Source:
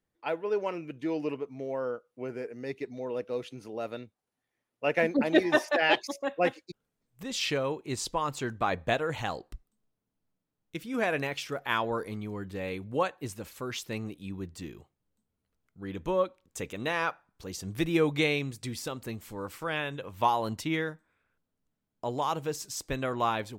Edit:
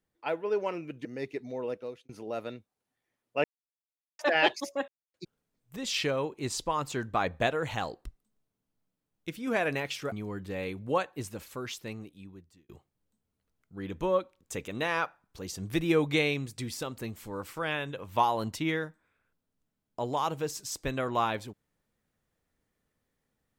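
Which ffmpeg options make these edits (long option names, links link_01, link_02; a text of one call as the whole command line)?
ffmpeg -i in.wav -filter_complex "[0:a]asplit=9[link_01][link_02][link_03][link_04][link_05][link_06][link_07][link_08][link_09];[link_01]atrim=end=1.052[link_10];[link_02]atrim=start=2.518:end=3.56,asetpts=PTS-STARTPTS,afade=type=out:start_time=0.612:duration=0.43[link_11];[link_03]atrim=start=3.56:end=4.91,asetpts=PTS-STARTPTS,afade=type=in:duration=0.004:curve=hsin,afade=type=out:start_time=1.346:duration=0.004:curve=hsin[link_12];[link_04]atrim=start=4.91:end=5.66,asetpts=PTS-STARTPTS,volume=0[link_13];[link_05]atrim=start=5.66:end=6.35,asetpts=PTS-STARTPTS,afade=type=in:duration=0.004:curve=hsin,afade=type=out:start_time=0.686:duration=0.004:curve=hsin[link_14];[link_06]atrim=start=6.35:end=6.61,asetpts=PTS-STARTPTS,volume=0[link_15];[link_07]atrim=start=6.61:end=11.592,asetpts=PTS-STARTPTS,afade=type=in:duration=0.004:curve=hsin[link_16];[link_08]atrim=start=12.168:end=14.74,asetpts=PTS-STARTPTS,afade=type=out:start_time=1.282:duration=1.29[link_17];[link_09]atrim=start=14.74,asetpts=PTS-STARTPTS,afade=type=in:duration=0.004:curve=hsin[link_18];[link_11][link_12][link_13][link_14][link_15][link_16]concat=n=6:v=0:a=1[link_19];[link_10][link_19]acrossfade=duration=0.004:curve1=hsin:curve2=hsin[link_20];[link_17][link_18]concat=n=2:v=0:a=1[link_21];[link_20][link_21]acrossfade=duration=0.004:curve1=hsin:curve2=hsin" out.wav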